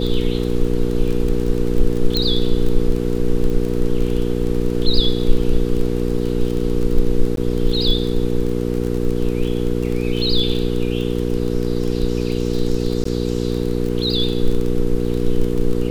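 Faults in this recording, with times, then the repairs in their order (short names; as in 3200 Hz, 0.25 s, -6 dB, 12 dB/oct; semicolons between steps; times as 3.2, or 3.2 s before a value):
crackle 24/s -22 dBFS
hum 60 Hz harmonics 8 -21 dBFS
2.17 pop -6 dBFS
7.36–7.37 gap 12 ms
13.04–13.05 gap 14 ms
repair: de-click; de-hum 60 Hz, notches 8; interpolate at 7.36, 12 ms; interpolate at 13.04, 14 ms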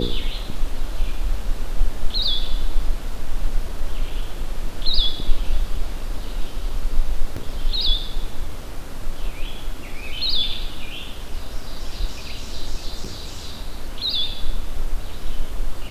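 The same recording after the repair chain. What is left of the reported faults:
none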